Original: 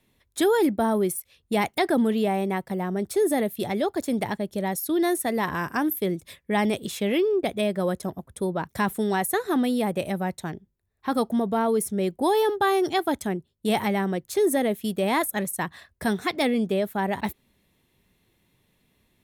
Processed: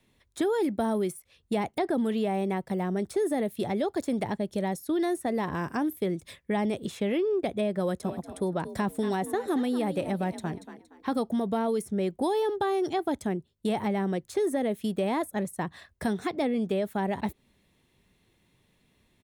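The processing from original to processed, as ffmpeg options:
-filter_complex "[0:a]asplit=3[s0][s1][s2];[s0]afade=t=out:st=8.03:d=0.02[s3];[s1]asplit=4[s4][s5][s6][s7];[s5]adelay=233,afreqshift=45,volume=0.2[s8];[s6]adelay=466,afreqshift=90,volume=0.0638[s9];[s7]adelay=699,afreqshift=135,volume=0.0204[s10];[s4][s8][s9][s10]amix=inputs=4:normalize=0,afade=t=in:st=8.03:d=0.02,afade=t=out:st=11.09:d=0.02[s11];[s2]afade=t=in:st=11.09:d=0.02[s12];[s3][s11][s12]amix=inputs=3:normalize=0,equalizer=f=13000:w=2.3:g=-10.5,acrossover=split=890|1800[s13][s14][s15];[s13]acompressor=threshold=0.0562:ratio=4[s16];[s14]acompressor=threshold=0.00631:ratio=4[s17];[s15]acompressor=threshold=0.00631:ratio=4[s18];[s16][s17][s18]amix=inputs=3:normalize=0"

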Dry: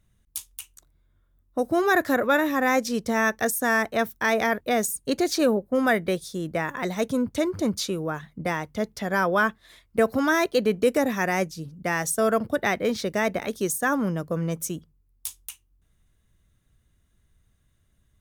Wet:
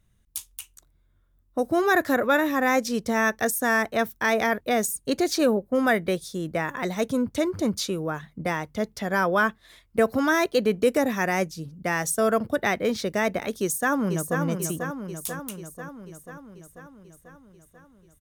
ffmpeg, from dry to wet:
-filter_complex "[0:a]asplit=2[s0][s1];[s1]afade=t=in:st=13.61:d=0.01,afade=t=out:st=14.41:d=0.01,aecho=0:1:490|980|1470|1960|2450|2940|3430|3920|4410|4900:0.501187|0.325772|0.211752|0.137639|0.0894651|0.0581523|0.037799|0.0245693|0.0159701|0.0103805[s2];[s0][s2]amix=inputs=2:normalize=0"

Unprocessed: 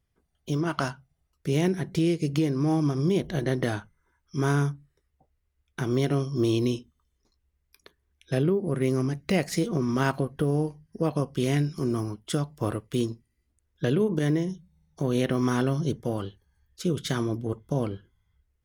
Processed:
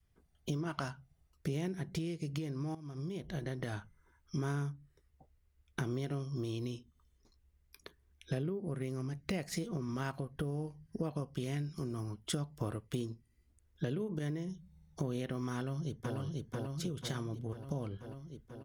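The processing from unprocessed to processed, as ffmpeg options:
-filter_complex "[0:a]asplit=2[s0][s1];[s1]afade=t=in:st=15.55:d=0.01,afade=t=out:st=16.17:d=0.01,aecho=0:1:490|980|1470|1960|2450|2940|3430|3920:0.668344|0.367589|0.202174|0.111196|0.0611576|0.0336367|0.0185002|0.0101751[s2];[s0][s2]amix=inputs=2:normalize=0,asplit=2[s3][s4];[s3]atrim=end=2.75,asetpts=PTS-STARTPTS,afade=t=out:st=2.746:d=0.004:c=hsin:silence=0.199526[s5];[s4]atrim=start=2.75,asetpts=PTS-STARTPTS,afade=t=in:d=0.98:c=qua:silence=0.199526[s6];[s5][s6]concat=n=2:v=0:a=1,lowshelf=f=240:g=4,acompressor=threshold=0.0178:ratio=4,adynamicequalizer=threshold=0.00501:dfrequency=310:dqfactor=0.75:tfrequency=310:tqfactor=0.75:attack=5:release=100:ratio=0.375:range=2.5:mode=cutabove:tftype=bell"

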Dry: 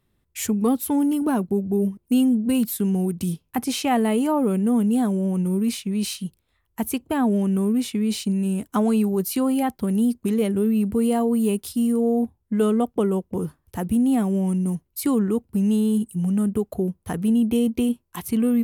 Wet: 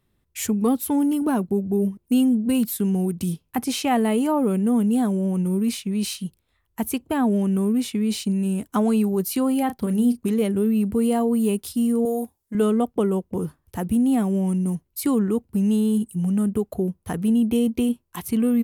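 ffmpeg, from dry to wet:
-filter_complex "[0:a]asplit=3[s0][s1][s2];[s0]afade=t=out:st=9.68:d=0.02[s3];[s1]asplit=2[s4][s5];[s5]adelay=33,volume=0.316[s6];[s4][s6]amix=inputs=2:normalize=0,afade=t=in:st=9.68:d=0.02,afade=t=out:st=10.28:d=0.02[s7];[s2]afade=t=in:st=10.28:d=0.02[s8];[s3][s7][s8]amix=inputs=3:normalize=0,asettb=1/sr,asplit=3[s9][s10][s11];[s9]atrim=end=12.054[s12];[s10]atrim=start=12.05:end=12.55,asetpts=PTS-STARTPTS,afade=t=in:d=0.004:c=qsin,afade=t=out:st=0.496:d=0.004:c=qsin,bass=f=250:g=-13,treble=f=4000:g=13[s13];[s11]atrim=start=12.546[s14];[s12][s13]acrossfade=d=0.004:c1=hsin:c2=qsin[s15];[s15][s14]acrossfade=d=0.004:c1=qsin:c2=hsin"

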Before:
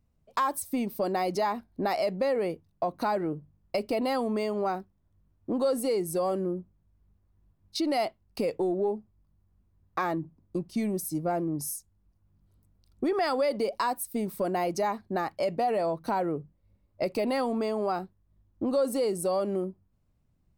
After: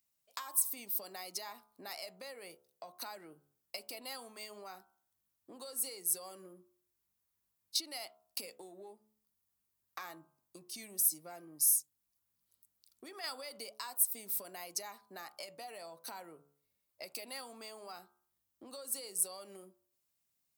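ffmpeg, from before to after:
-filter_complex "[0:a]asplit=3[s0][s1][s2];[s0]atrim=end=13.242[s3];[s1]atrim=start=13.238:end=13.722,asetpts=PTS-STARTPTS,volume=1.88[s4];[s2]atrim=start=13.718[s5];[s3][s4]acrossfade=d=0.004:c1=hsin:c2=hsin[s6];[s6][s5]acrossfade=d=0.004:c1=hsin:c2=hsin,acrossover=split=170[s7][s8];[s8]acompressor=threshold=0.0224:ratio=6[s9];[s7][s9]amix=inputs=2:normalize=0,aderivative,bandreject=f=71.56:t=h:w=4,bandreject=f=143.12:t=h:w=4,bandreject=f=214.68:t=h:w=4,bandreject=f=286.24:t=h:w=4,bandreject=f=357.8:t=h:w=4,bandreject=f=429.36:t=h:w=4,bandreject=f=500.92:t=h:w=4,bandreject=f=572.48:t=h:w=4,bandreject=f=644.04:t=h:w=4,bandreject=f=715.6:t=h:w=4,bandreject=f=787.16:t=h:w=4,bandreject=f=858.72:t=h:w=4,bandreject=f=930.28:t=h:w=4,bandreject=f=1001.84:t=h:w=4,bandreject=f=1073.4:t=h:w=4,bandreject=f=1144.96:t=h:w=4,bandreject=f=1216.52:t=h:w=4,bandreject=f=1288.08:t=h:w=4,bandreject=f=1359.64:t=h:w=4,bandreject=f=1431.2:t=h:w=4,bandreject=f=1502.76:t=h:w=4,bandreject=f=1574.32:t=h:w=4,volume=2.37"

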